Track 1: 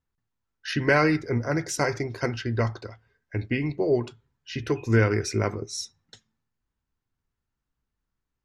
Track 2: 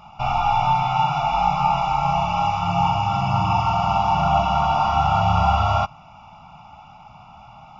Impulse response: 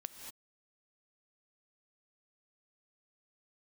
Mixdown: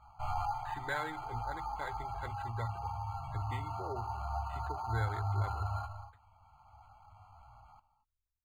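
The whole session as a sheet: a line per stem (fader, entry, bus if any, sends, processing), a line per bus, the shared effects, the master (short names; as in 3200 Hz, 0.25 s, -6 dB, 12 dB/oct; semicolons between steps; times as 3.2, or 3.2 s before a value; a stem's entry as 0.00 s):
-14.5 dB, 0.00 s, send -9 dB, AGC gain up to 8 dB
-5.5 dB, 0.00 s, send -3.5 dB, notch 2800 Hz, Q 17; chorus voices 2, 0.66 Hz, delay 17 ms, depth 4.9 ms; auto duck -13 dB, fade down 0.20 s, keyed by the first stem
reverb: on, pre-delay 3 ms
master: spectral gate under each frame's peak -25 dB strong; EQ curve 100 Hz 0 dB, 160 Hz -23 dB, 1700 Hz -3 dB, 7500 Hz -29 dB; decimation joined by straight lines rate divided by 8×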